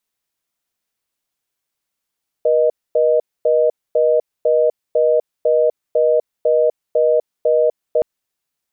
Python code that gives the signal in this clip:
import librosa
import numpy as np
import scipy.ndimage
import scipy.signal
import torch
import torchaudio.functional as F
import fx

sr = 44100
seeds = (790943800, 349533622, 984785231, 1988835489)

y = fx.call_progress(sr, length_s=5.57, kind='reorder tone', level_db=-14.0)